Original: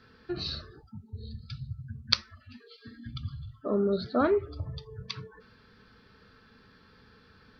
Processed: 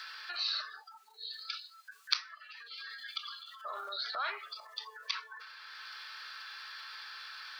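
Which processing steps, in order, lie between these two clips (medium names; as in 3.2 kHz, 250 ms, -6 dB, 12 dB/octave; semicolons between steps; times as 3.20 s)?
Bessel high-pass 1.4 kHz, order 6; transient shaper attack -2 dB, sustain +8 dB; three bands compressed up and down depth 70%; trim +7 dB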